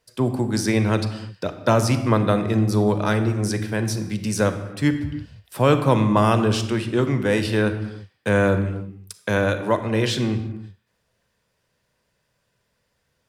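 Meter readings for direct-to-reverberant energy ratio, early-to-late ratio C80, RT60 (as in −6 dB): 8.5 dB, 12.0 dB, non-exponential decay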